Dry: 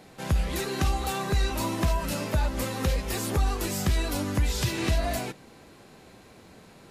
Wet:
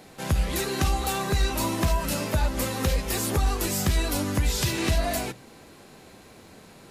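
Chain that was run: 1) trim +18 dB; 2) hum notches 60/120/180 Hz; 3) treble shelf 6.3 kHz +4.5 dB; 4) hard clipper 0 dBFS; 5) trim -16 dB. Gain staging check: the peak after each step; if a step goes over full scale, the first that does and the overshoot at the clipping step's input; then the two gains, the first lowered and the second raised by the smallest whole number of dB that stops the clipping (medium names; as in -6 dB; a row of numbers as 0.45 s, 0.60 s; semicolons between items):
+1.0 dBFS, +3.0 dBFS, +3.0 dBFS, 0.0 dBFS, -16.0 dBFS; step 1, 3.0 dB; step 1 +15 dB, step 5 -13 dB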